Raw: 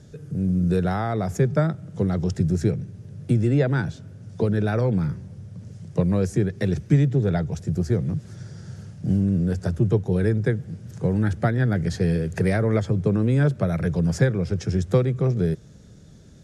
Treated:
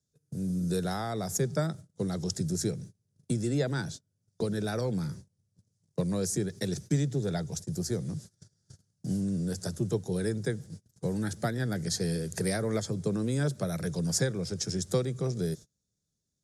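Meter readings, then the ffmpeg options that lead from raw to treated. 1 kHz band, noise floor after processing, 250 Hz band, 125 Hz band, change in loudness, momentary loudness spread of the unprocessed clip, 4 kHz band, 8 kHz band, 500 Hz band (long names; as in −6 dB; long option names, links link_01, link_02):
−7.5 dB, −82 dBFS, −8.5 dB, −11.0 dB, −8.5 dB, 12 LU, +3.5 dB, can't be measured, −7.5 dB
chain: -filter_complex "[0:a]agate=range=-30dB:threshold=-33dB:ratio=16:detection=peak,acrossover=split=120|3700[link_01][link_02][link_03];[link_01]acompressor=threshold=-40dB:ratio=6[link_04];[link_04][link_02][link_03]amix=inputs=3:normalize=0,aexciter=amount=6.8:drive=2.7:freq=3800,volume=-7.5dB"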